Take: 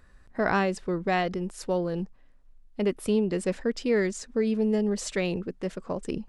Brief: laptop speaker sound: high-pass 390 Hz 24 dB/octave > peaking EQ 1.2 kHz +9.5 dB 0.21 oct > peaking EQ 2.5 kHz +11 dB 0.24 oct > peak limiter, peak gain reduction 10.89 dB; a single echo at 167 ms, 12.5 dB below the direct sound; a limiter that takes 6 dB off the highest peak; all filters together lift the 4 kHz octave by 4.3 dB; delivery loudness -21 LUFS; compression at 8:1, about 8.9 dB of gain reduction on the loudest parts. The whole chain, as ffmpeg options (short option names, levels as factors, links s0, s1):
-af "equalizer=f=4000:t=o:g=4,acompressor=threshold=0.0355:ratio=8,alimiter=level_in=1.12:limit=0.0631:level=0:latency=1,volume=0.891,highpass=f=390:w=0.5412,highpass=f=390:w=1.3066,equalizer=f=1200:t=o:w=0.21:g=9.5,equalizer=f=2500:t=o:w=0.24:g=11,aecho=1:1:167:0.237,volume=10,alimiter=limit=0.266:level=0:latency=1"